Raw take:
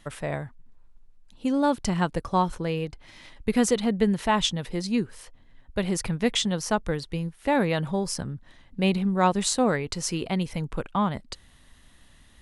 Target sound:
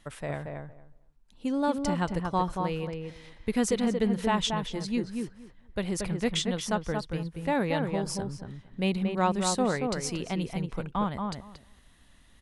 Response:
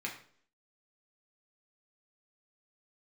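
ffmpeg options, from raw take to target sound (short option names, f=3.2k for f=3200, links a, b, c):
-filter_complex "[0:a]asplit=2[a][b];[b]adelay=230,lowpass=f=1.8k:p=1,volume=-4dB,asplit=2[c][d];[d]adelay=230,lowpass=f=1.8k:p=1,volume=0.16,asplit=2[e][f];[f]adelay=230,lowpass=f=1.8k:p=1,volume=0.16[g];[a][c][e][g]amix=inputs=4:normalize=0,volume=-4.5dB"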